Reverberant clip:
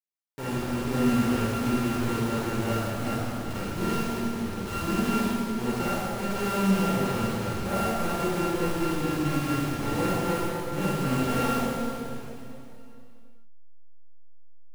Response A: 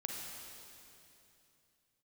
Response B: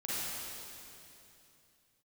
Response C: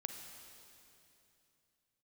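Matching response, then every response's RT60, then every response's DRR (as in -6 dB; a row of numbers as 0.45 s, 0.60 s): B; 2.8 s, 2.8 s, 2.8 s; -0.5 dB, -10.0 dB, 4.5 dB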